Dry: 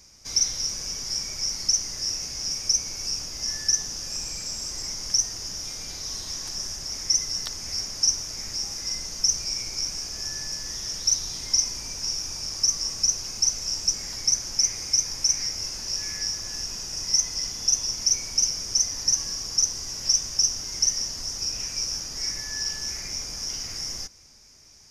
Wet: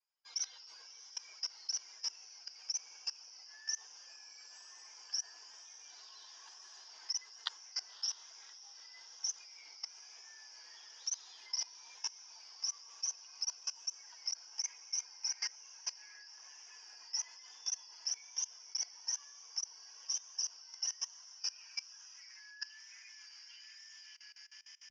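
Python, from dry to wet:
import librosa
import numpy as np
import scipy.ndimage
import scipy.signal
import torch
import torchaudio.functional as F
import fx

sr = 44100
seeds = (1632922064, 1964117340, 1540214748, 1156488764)

y = fx.bin_expand(x, sr, power=2.0)
y = fx.cabinet(y, sr, low_hz=430.0, low_slope=12, high_hz=4900.0, hz=(580.0, 970.0, 1600.0, 3200.0), db=(-10, 4, 4, 8))
y = fx.echo_diffused(y, sr, ms=636, feedback_pct=58, wet_db=-13.5)
y = fx.filter_sweep_highpass(y, sr, from_hz=710.0, to_hz=2300.0, start_s=20.07, end_s=23.84, q=0.99)
y = fx.echo_diffused(y, sr, ms=589, feedback_pct=63, wet_db=-10.0)
y = y * (1.0 - 0.7 / 2.0 + 0.7 / 2.0 * np.cos(2.0 * np.pi * 6.8 * (np.arange(len(y)) / sr)))
y = fx.level_steps(y, sr, step_db=20)
y = fx.vibrato(y, sr, rate_hz=1.1, depth_cents=44.0)
y = y * 10.0 ** (5.0 / 20.0)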